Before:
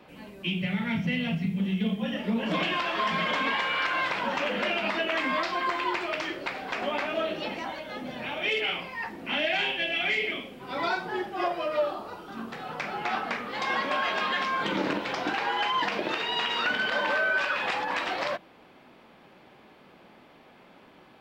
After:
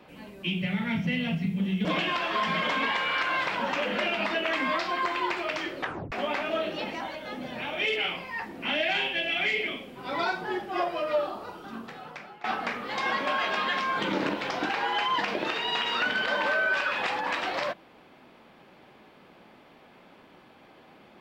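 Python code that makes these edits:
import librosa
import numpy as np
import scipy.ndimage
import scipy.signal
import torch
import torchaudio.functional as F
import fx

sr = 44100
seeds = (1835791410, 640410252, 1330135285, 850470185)

y = fx.edit(x, sr, fx.cut(start_s=1.85, length_s=0.64),
    fx.tape_stop(start_s=6.41, length_s=0.35),
    fx.fade_out_to(start_s=12.23, length_s=0.85, floor_db=-21.0), tone=tone)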